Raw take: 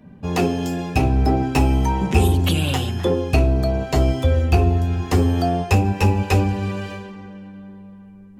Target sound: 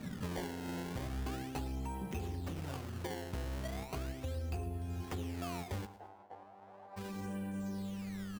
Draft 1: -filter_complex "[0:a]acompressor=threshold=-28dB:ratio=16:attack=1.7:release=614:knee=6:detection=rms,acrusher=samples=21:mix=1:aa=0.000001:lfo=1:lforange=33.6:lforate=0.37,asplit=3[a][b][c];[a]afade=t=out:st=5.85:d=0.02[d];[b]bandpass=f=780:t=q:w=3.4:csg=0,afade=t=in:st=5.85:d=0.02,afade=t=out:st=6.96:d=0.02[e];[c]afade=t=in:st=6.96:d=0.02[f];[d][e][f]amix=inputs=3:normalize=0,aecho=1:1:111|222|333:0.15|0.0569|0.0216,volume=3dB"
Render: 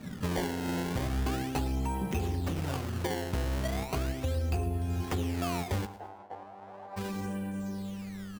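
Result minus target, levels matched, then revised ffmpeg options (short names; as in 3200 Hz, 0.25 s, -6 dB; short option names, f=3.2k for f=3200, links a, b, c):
compressor: peak gain reduction -8.5 dB
-filter_complex "[0:a]acompressor=threshold=-37dB:ratio=16:attack=1.7:release=614:knee=6:detection=rms,acrusher=samples=21:mix=1:aa=0.000001:lfo=1:lforange=33.6:lforate=0.37,asplit=3[a][b][c];[a]afade=t=out:st=5.85:d=0.02[d];[b]bandpass=f=780:t=q:w=3.4:csg=0,afade=t=in:st=5.85:d=0.02,afade=t=out:st=6.96:d=0.02[e];[c]afade=t=in:st=6.96:d=0.02[f];[d][e][f]amix=inputs=3:normalize=0,aecho=1:1:111|222|333:0.15|0.0569|0.0216,volume=3dB"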